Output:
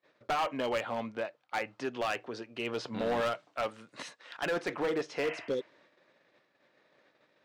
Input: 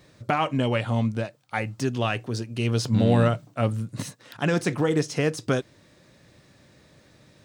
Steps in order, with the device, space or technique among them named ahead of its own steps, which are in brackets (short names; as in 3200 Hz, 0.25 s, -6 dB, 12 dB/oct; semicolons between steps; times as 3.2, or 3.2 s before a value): 3.21–4.46 tilt +2.5 dB/oct; 5.25–5.7 spectral repair 600–3200 Hz both; walkie-talkie (BPF 460–2800 Hz; hard clip -25 dBFS, distortion -10 dB; gate -60 dBFS, range -23 dB); gain -1.5 dB